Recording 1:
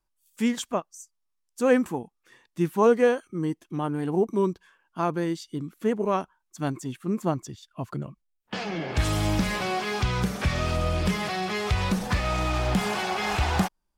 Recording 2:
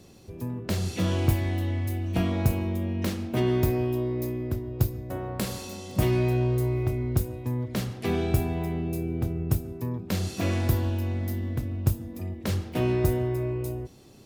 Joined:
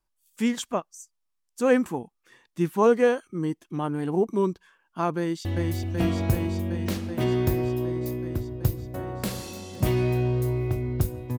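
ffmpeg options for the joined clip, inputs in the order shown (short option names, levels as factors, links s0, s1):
-filter_complex "[0:a]apad=whole_dur=11.38,atrim=end=11.38,atrim=end=5.452[s0];[1:a]atrim=start=1.608:end=7.54[s1];[s0][s1]acrossfade=d=0.004:c1=hsin:c2=hsin,asplit=2[s2][s3];[s3]afade=t=in:st=5.18:d=0.01,afade=t=out:st=5.45:d=0.01,aecho=0:1:380|760|1140|1520|1900|2280|2660|3040|3420|3800|4180|4560:0.794328|0.635463|0.50837|0.406696|0.325357|0.260285|0.208228|0.166583|0.133266|0.106613|0.0852903|0.0682323[s4];[s2][s4]amix=inputs=2:normalize=0"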